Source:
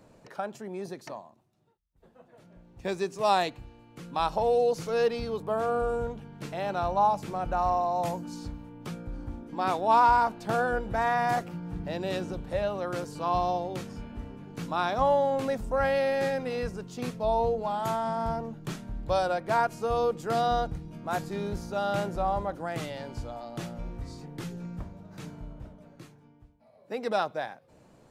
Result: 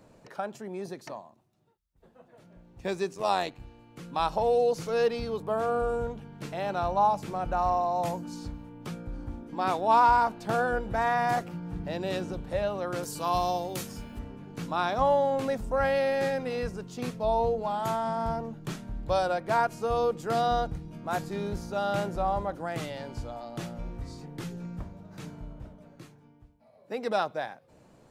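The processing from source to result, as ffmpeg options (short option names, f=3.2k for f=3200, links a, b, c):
-filter_complex "[0:a]asettb=1/sr,asplit=3[a][b][c];[a]atrim=end=3.134[d];[b]atrim=start=3.13:end=3.6,asetpts=PTS-STARTPTS,afade=t=in:d=0.004:c=qsin,afade=t=out:st=0.466:d=0.004:c=qsin,tremolo=f=92:d=0.667[e];[c]atrim=start=3.596[f];[d][e]acrossfade=d=0.004:c1=hsin:c2=qsin[g];[g][f]acrossfade=d=0.004:c1=qsin:c2=hsin,asettb=1/sr,asplit=3[h][i][j];[h]atrim=end=13.034[k];[i]atrim=start=13.03:end=14.19,asetpts=PTS-STARTPTS,afade=t=in:d=0.004:c=qsin,afade=t=out:st=1.156:d=0.004:c=qsin,aemphasis=mode=production:type=75fm[l];[j]atrim=start=14.186[m];[k][l]acrossfade=d=0.004:c1=hsin:c2=qsin[n];[n][m]acrossfade=d=0.004:c1=qsin:c2=hsin"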